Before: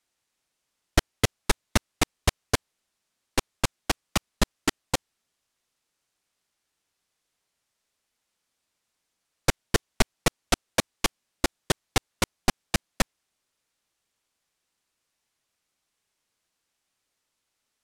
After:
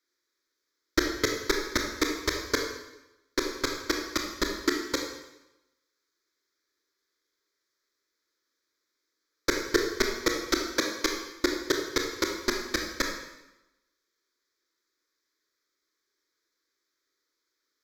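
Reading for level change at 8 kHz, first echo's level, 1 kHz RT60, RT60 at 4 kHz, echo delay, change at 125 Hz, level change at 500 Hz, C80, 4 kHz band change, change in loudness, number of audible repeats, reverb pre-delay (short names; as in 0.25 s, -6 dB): -3.0 dB, none, 0.95 s, 0.90 s, none, -13.5 dB, +2.0 dB, 6.5 dB, -0.5 dB, -1.0 dB, none, 22 ms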